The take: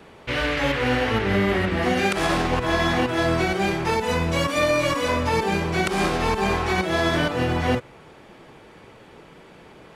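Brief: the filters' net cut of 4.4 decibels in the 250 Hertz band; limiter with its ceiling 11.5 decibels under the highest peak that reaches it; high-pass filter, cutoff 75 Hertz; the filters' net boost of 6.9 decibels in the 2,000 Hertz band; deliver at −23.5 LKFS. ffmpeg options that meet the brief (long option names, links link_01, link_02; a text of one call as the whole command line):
ffmpeg -i in.wav -af "highpass=75,equalizer=frequency=250:width_type=o:gain=-6.5,equalizer=frequency=2000:width_type=o:gain=8.5,volume=1.5dB,alimiter=limit=-15.5dB:level=0:latency=1" out.wav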